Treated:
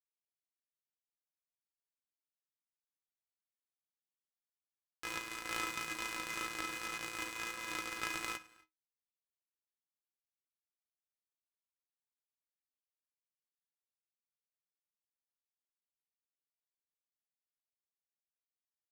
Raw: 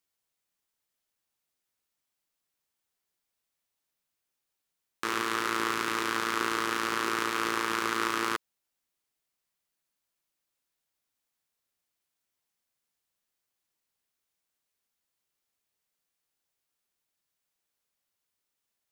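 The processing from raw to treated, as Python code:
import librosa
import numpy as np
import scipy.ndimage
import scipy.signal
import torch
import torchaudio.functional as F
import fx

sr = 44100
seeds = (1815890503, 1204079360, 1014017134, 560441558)

y = fx.peak_eq(x, sr, hz=2400.0, db=5.5, octaves=0.41)
y = fx.stiff_resonator(y, sr, f0_hz=150.0, decay_s=0.63, stiffness=0.03)
y = fx.rev_gated(y, sr, seeds[0], gate_ms=290, shape='rising', drr_db=8.0)
y = fx.power_curve(y, sr, exponent=2.0)
y = fx.am_noise(y, sr, seeds[1], hz=5.7, depth_pct=55)
y = y * 10.0 ** (16.5 / 20.0)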